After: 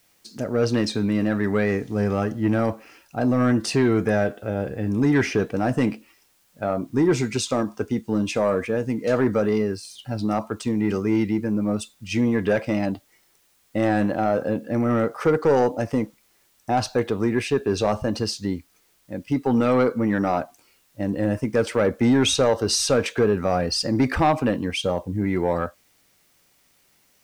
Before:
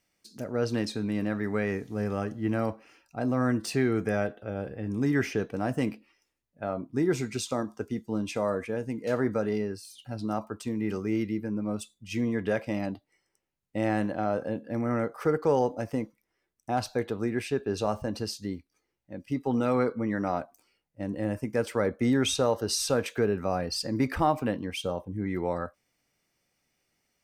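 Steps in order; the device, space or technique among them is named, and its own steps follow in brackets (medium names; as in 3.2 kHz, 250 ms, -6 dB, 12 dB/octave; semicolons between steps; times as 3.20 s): compact cassette (saturation -19.5 dBFS, distortion -16 dB; low-pass 8.8 kHz 12 dB/octave; wow and flutter 26 cents; white noise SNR 40 dB); trim +8.5 dB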